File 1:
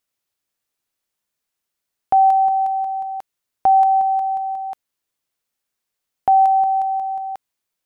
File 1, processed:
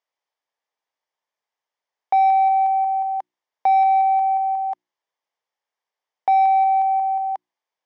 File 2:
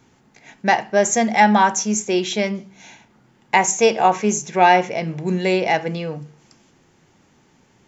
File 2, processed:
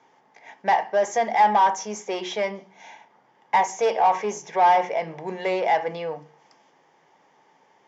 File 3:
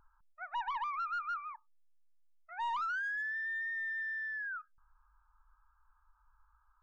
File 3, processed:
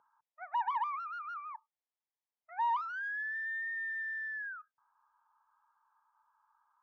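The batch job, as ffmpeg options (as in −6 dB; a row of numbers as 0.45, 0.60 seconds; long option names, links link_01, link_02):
-filter_complex "[0:a]asplit=2[link_01][link_02];[link_02]highpass=frequency=720:poles=1,volume=20dB,asoftclip=type=tanh:threshold=-1dB[link_03];[link_01][link_03]amix=inputs=2:normalize=0,lowpass=frequency=2100:poles=1,volume=-6dB,highpass=210,equalizer=frequency=230:width_type=q:width=4:gain=-9,equalizer=frequency=340:width_type=q:width=4:gain=-6,equalizer=frequency=880:width_type=q:width=4:gain=4,equalizer=frequency=1400:width_type=q:width=4:gain=-9,equalizer=frequency=2600:width_type=q:width=4:gain=-8,equalizer=frequency=4100:width_type=q:width=4:gain=-9,lowpass=frequency=5800:width=0.5412,lowpass=frequency=5800:width=1.3066,bandreject=frequency=60:width_type=h:width=6,bandreject=frequency=120:width_type=h:width=6,bandreject=frequency=180:width_type=h:width=6,bandreject=frequency=240:width_type=h:width=6,bandreject=frequency=300:width_type=h:width=6,bandreject=frequency=360:width_type=h:width=6,volume=-9dB"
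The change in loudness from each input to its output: −1.5, −4.5, +0.5 LU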